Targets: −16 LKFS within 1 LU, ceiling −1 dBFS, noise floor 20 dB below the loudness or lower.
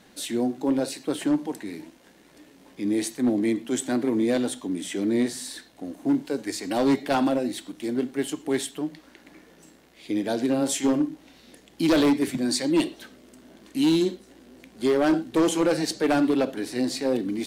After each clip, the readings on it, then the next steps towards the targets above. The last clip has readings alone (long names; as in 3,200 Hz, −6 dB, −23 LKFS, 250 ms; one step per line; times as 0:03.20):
share of clipped samples 1.4%; peaks flattened at −16.0 dBFS; integrated loudness −25.5 LKFS; sample peak −16.0 dBFS; target loudness −16.0 LKFS
→ clipped peaks rebuilt −16 dBFS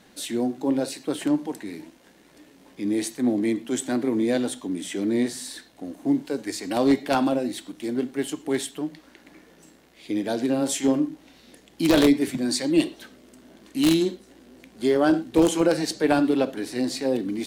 share of clipped samples 0.0%; integrated loudness −24.5 LKFS; sample peak −7.0 dBFS; target loudness −16.0 LKFS
→ level +8.5 dB
brickwall limiter −1 dBFS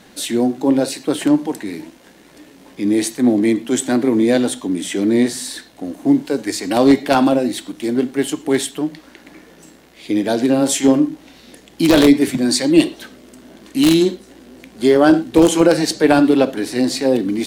integrated loudness −16.5 LKFS; sample peak −1.0 dBFS; background noise floor −46 dBFS